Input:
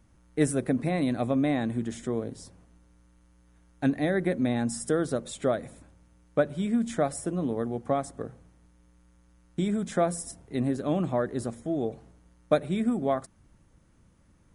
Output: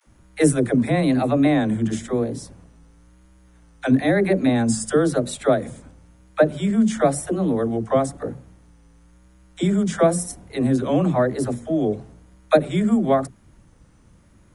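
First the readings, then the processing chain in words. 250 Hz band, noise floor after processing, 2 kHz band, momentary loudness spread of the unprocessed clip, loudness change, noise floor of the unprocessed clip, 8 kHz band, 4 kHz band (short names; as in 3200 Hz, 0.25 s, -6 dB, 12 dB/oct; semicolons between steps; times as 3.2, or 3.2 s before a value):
+8.0 dB, -53 dBFS, +8.0 dB, 8 LU, +8.0 dB, -61 dBFS, +8.0 dB, +8.0 dB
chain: vibrato 0.99 Hz 92 cents; dispersion lows, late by 72 ms, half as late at 370 Hz; gain +8 dB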